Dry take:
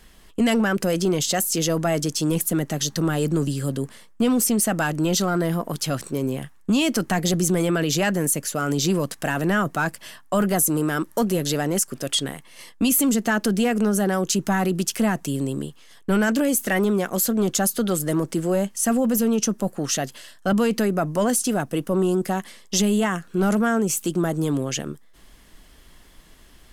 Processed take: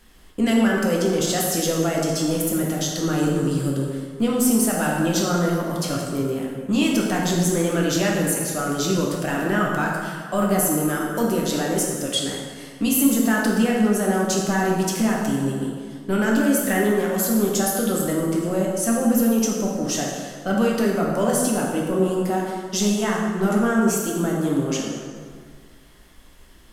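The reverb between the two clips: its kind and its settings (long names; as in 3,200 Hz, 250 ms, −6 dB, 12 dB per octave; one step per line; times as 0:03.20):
dense smooth reverb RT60 1.9 s, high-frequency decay 0.6×, DRR −3 dB
level −4 dB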